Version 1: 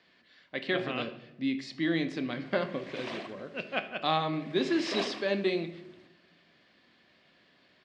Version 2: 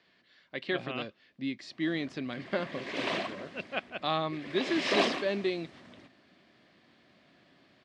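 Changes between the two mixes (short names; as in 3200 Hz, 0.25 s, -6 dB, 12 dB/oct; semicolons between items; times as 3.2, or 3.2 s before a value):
background +7.5 dB; reverb: off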